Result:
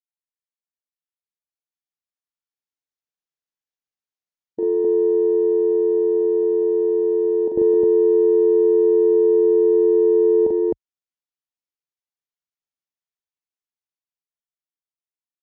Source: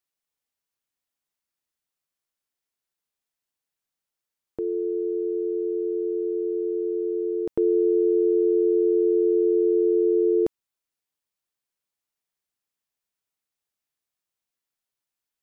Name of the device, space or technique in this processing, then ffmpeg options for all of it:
low-bitrate web radio: -filter_complex "[0:a]afwtdn=0.0316,asettb=1/sr,asplit=3[link_01][link_02][link_03];[link_01]atrim=end=9.124[link_04];[link_02]atrim=start=9.12:end=9.73,asetpts=PTS-STARTPTS,afade=type=in:duration=0.004:curve=qsin,afade=type=out:start_time=0.606:duration=0.004:curve=qsin,lowshelf=frequency=220:gain=3[link_05];[link_03]atrim=start=9.726[link_06];[link_04][link_05]acrossfade=duration=0.004:curve1=hsin:curve2=qsin[link_07];[link_07][link_06]acrossfade=duration=0.004:curve1=qsin:curve2=hsin,aecho=1:1:40.82|259.5:0.708|0.891,dynaudnorm=framelen=200:gausssize=21:maxgain=8.5dB,alimiter=limit=-5.5dB:level=0:latency=1:release=71,volume=-3.5dB" -ar 16000 -c:a libmp3lame -b:a 48k

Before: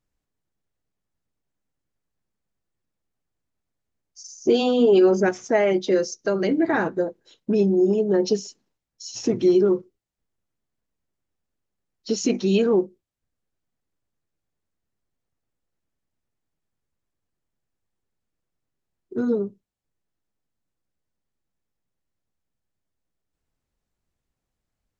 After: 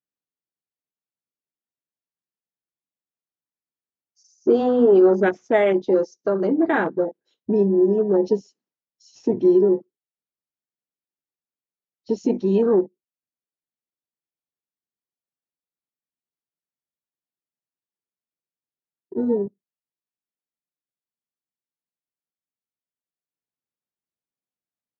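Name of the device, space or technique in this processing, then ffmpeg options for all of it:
over-cleaned archive recording: -af "highpass=180,lowpass=6200,afwtdn=0.0316,volume=2dB"

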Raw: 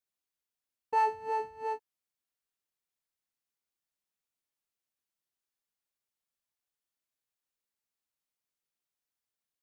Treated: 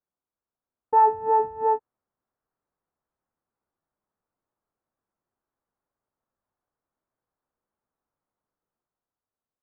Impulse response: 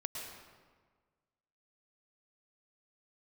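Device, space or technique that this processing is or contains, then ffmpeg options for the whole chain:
action camera in a waterproof case: -af "lowpass=frequency=1300:width=0.5412,lowpass=frequency=1300:width=1.3066,dynaudnorm=framelen=190:gausssize=11:maxgain=7dB,volume=6dB" -ar 48000 -c:a aac -b:a 64k

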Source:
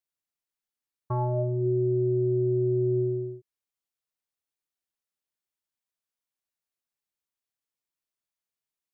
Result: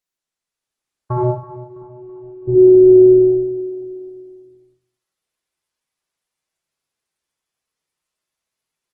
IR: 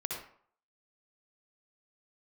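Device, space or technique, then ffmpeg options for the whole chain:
speakerphone in a meeting room: -filter_complex "[0:a]asplit=3[link_01][link_02][link_03];[link_01]afade=type=out:start_time=1.23:duration=0.02[link_04];[link_02]agate=range=-29dB:threshold=-20dB:ratio=16:detection=peak,afade=type=in:start_time=1.23:duration=0.02,afade=type=out:start_time=2.47:duration=0.02[link_05];[link_03]afade=type=in:start_time=2.47:duration=0.02[link_06];[link_04][link_05][link_06]amix=inputs=3:normalize=0,aecho=1:1:329|658|987|1316:0.158|0.0745|0.035|0.0165[link_07];[1:a]atrim=start_sample=2205[link_08];[link_07][link_08]afir=irnorm=-1:irlink=0,dynaudnorm=framelen=220:gausssize=5:maxgain=4.5dB,volume=5dB" -ar 48000 -c:a libopus -b:a 16k

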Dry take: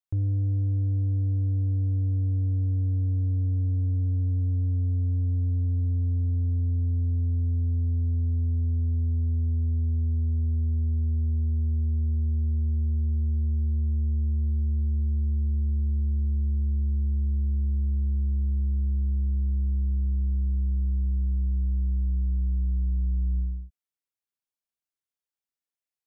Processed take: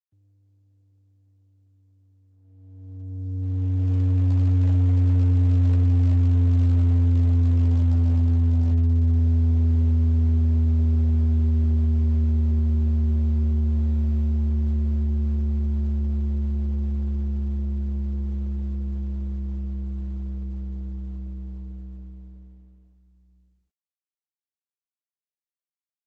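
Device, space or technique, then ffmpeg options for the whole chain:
video call: -af "highpass=100,dynaudnorm=framelen=400:gausssize=17:maxgain=11dB,agate=range=-33dB:threshold=-20dB:ratio=16:detection=peak" -ar 48000 -c:a libopus -b:a 12k

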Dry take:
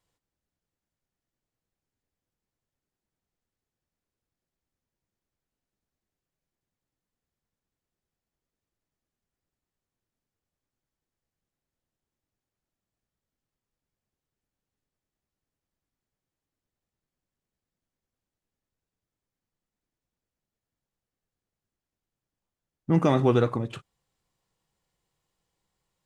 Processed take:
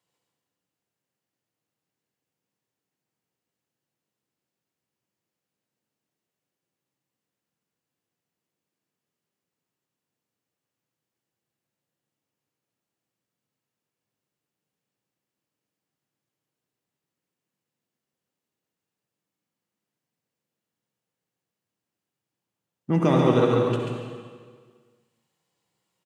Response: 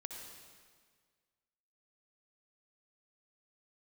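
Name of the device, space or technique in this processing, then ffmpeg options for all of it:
PA in a hall: -filter_complex "[0:a]highpass=frequency=120:width=0.5412,highpass=frequency=120:width=1.3066,equalizer=frequency=2800:width_type=o:width=0.22:gain=4,aecho=1:1:138:0.631[link_01];[1:a]atrim=start_sample=2205[link_02];[link_01][link_02]afir=irnorm=-1:irlink=0,volume=4.5dB"

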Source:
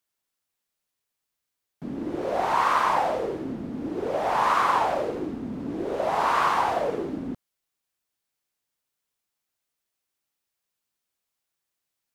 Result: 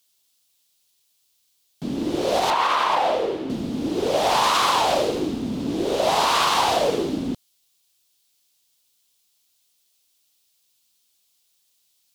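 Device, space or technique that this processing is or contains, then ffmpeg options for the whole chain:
over-bright horn tweeter: -filter_complex "[0:a]highshelf=frequency=2500:width_type=q:width=1.5:gain=10.5,alimiter=limit=-16dB:level=0:latency=1:release=61,asettb=1/sr,asplit=3[link_01][link_02][link_03];[link_01]atrim=end=2.504[link_04];[link_02]atrim=start=2.5:end=3.5,asetpts=PTS-STARTPTS,afade=type=in:duration=0.004:curve=qsin,afade=type=out:start_time=0.996:duration=0.004:curve=qsin,bass=frequency=250:gain=-9,treble=frequency=4000:gain=-14[link_05];[link_03]atrim=start=3.496[link_06];[link_04][link_05]acrossfade=duration=0.004:curve1=hsin:curve2=qsin[link_07];[link_07][link_06]acrossfade=duration=0.004:curve1=qsin:curve2=hsin,volume=6dB"

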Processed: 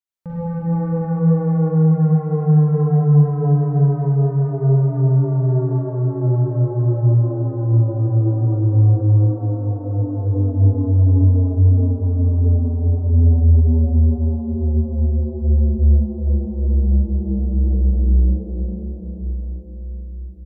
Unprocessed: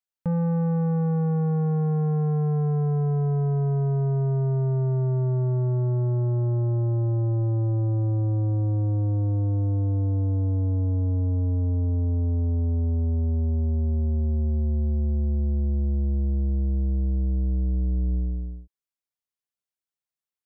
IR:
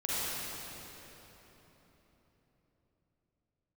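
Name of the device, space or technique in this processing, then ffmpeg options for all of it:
cave: -filter_complex "[0:a]asplit=4[link_01][link_02][link_03][link_04];[link_02]adelay=341,afreqshift=150,volume=-19.5dB[link_05];[link_03]adelay=682,afreqshift=300,volume=-28.4dB[link_06];[link_04]adelay=1023,afreqshift=450,volume=-37.2dB[link_07];[link_01][link_05][link_06][link_07]amix=inputs=4:normalize=0,aecho=1:1:363:0.376[link_08];[1:a]atrim=start_sample=2205[link_09];[link_08][link_09]afir=irnorm=-1:irlink=0,volume=-3.5dB"

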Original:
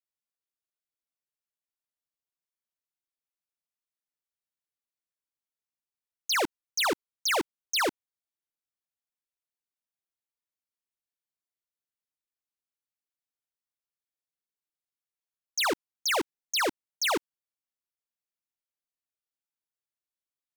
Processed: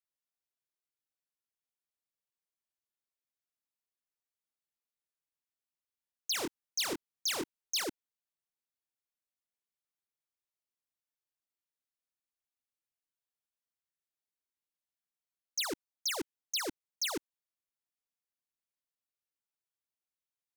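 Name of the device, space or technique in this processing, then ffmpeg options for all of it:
one-band saturation: -filter_complex "[0:a]asettb=1/sr,asplit=3[link_01][link_02][link_03];[link_01]atrim=end=6.324[link_04];[link_02]atrim=start=6.32:end=7.84,asetpts=PTS-STARTPTS,afade=type=in:duration=0.004:curve=qsin,afade=type=out:start_time=1.516:duration=0.004:curve=qsin,asplit=2[link_05][link_06];[link_06]adelay=23,volume=-5dB[link_07];[link_05][link_07]amix=inputs=2:normalize=0,atrim=end_sample=67032[link_08];[link_03]atrim=start=7.836[link_09];[link_04][link_08]acrossfade=duration=0.004:curve1=hsin:curve2=qsin[link_10];[link_10][link_09]acrossfade=duration=0.004:curve1=qsin:curve2=hsin,acrossover=split=310|3400[link_11][link_12][link_13];[link_12]asoftclip=type=tanh:threshold=-35dB[link_14];[link_11][link_14][link_13]amix=inputs=3:normalize=0,volume=-4dB"

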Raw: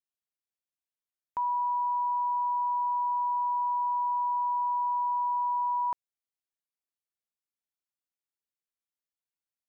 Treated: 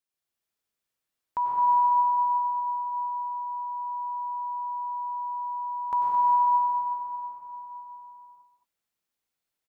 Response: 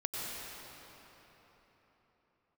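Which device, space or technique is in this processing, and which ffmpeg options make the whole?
cave: -filter_complex "[0:a]aecho=1:1:218:0.355[link_01];[1:a]atrim=start_sample=2205[link_02];[link_01][link_02]afir=irnorm=-1:irlink=0,volume=5dB"

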